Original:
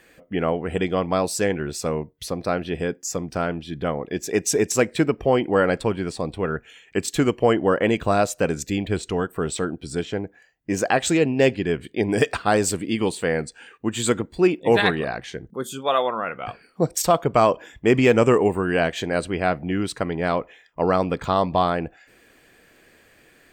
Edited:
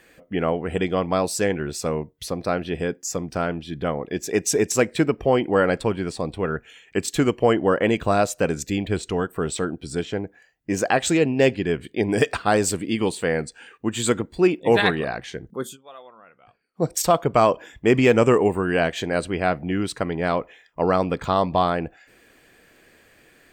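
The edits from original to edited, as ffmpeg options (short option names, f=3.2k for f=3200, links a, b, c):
-filter_complex "[0:a]asplit=3[a][b][c];[a]atrim=end=15.77,asetpts=PTS-STARTPTS,afade=t=out:st=15.62:d=0.15:c=qsin:silence=0.0749894[d];[b]atrim=start=15.77:end=16.74,asetpts=PTS-STARTPTS,volume=-22.5dB[e];[c]atrim=start=16.74,asetpts=PTS-STARTPTS,afade=t=in:d=0.15:c=qsin:silence=0.0749894[f];[d][e][f]concat=n=3:v=0:a=1"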